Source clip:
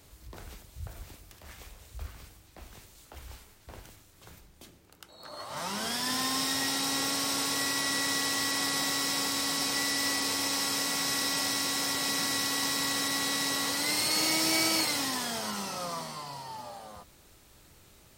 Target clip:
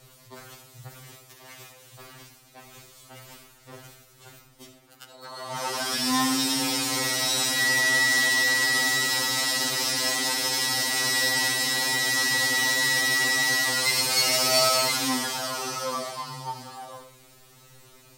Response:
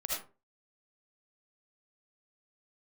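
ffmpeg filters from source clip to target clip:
-filter_complex "[0:a]asplit=2[link_01][link_02];[link_02]lowshelf=frequency=77:gain=-10[link_03];[1:a]atrim=start_sample=2205[link_04];[link_03][link_04]afir=irnorm=-1:irlink=0,volume=-10.5dB[link_05];[link_01][link_05]amix=inputs=2:normalize=0,afftfilt=real='re*2.45*eq(mod(b,6),0)':imag='im*2.45*eq(mod(b,6),0)':win_size=2048:overlap=0.75,volume=5dB"

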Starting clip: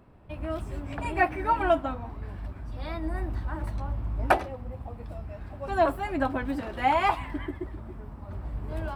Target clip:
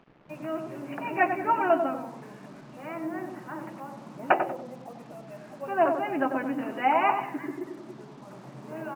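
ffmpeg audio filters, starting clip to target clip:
ffmpeg -i in.wav -filter_complex "[0:a]afftfilt=real='re*between(b*sr/4096,120,3000)':imag='im*between(b*sr/4096,120,3000)':win_size=4096:overlap=0.75,adynamicequalizer=threshold=0.002:dfrequency=160:dqfactor=2.6:tfrequency=160:tqfactor=2.6:attack=5:release=100:ratio=0.375:range=2.5:mode=cutabove:tftype=bell,acrusher=bits=8:mix=0:aa=0.5,asplit=2[link_01][link_02];[link_02]adelay=94,lowpass=frequency=830:poles=1,volume=-4dB,asplit=2[link_03][link_04];[link_04]adelay=94,lowpass=frequency=830:poles=1,volume=0.48,asplit=2[link_05][link_06];[link_06]adelay=94,lowpass=frequency=830:poles=1,volume=0.48,asplit=2[link_07][link_08];[link_08]adelay=94,lowpass=frequency=830:poles=1,volume=0.48,asplit=2[link_09][link_10];[link_10]adelay=94,lowpass=frequency=830:poles=1,volume=0.48,asplit=2[link_11][link_12];[link_12]adelay=94,lowpass=frequency=830:poles=1,volume=0.48[link_13];[link_03][link_05][link_07][link_09][link_11][link_13]amix=inputs=6:normalize=0[link_14];[link_01][link_14]amix=inputs=2:normalize=0" out.wav

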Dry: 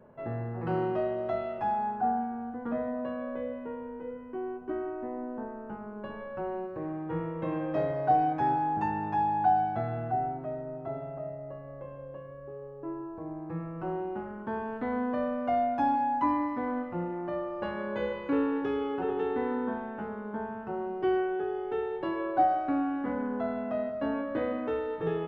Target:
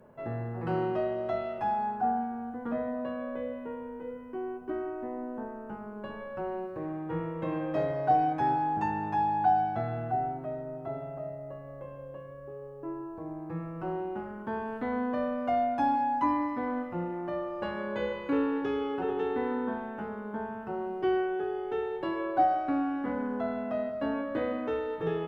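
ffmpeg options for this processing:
ffmpeg -i in.wav -af "aemphasis=mode=production:type=cd" out.wav

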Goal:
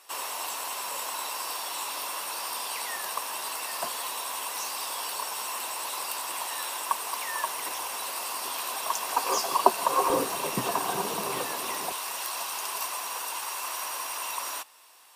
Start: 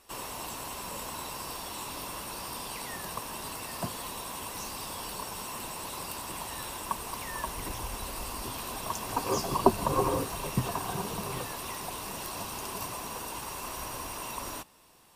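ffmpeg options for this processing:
ffmpeg -i in.wav -af "asetnsamples=nb_out_samples=441:pad=0,asendcmd='10.1 highpass f 300;11.92 highpass f 840',highpass=670,volume=6dB" out.wav

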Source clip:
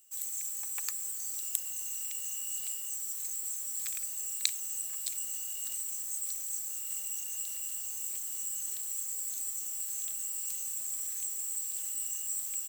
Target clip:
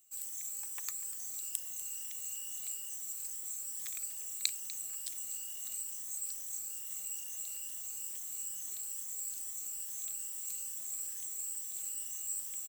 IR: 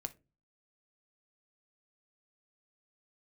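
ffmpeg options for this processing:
-af "afftfilt=real='re*pow(10,6/40*sin(2*PI*(1.2*log(max(b,1)*sr/1024/100)/log(2)-(2.3)*(pts-256)/sr)))':imag='im*pow(10,6/40*sin(2*PI*(1.2*log(max(b,1)*sr/1024/100)/log(2)-(2.3)*(pts-256)/sr)))':win_size=1024:overlap=0.75,lowshelf=frequency=420:gain=4,aecho=1:1:245:0.168,volume=-5dB"

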